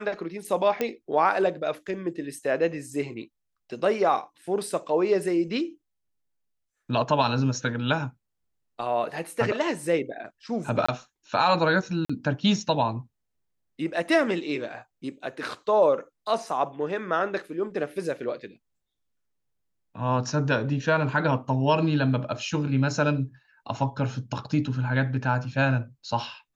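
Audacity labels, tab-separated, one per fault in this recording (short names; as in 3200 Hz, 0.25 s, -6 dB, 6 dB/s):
0.810000	0.810000	pop -13 dBFS
10.860000	10.880000	gap 25 ms
12.050000	12.100000	gap 45 ms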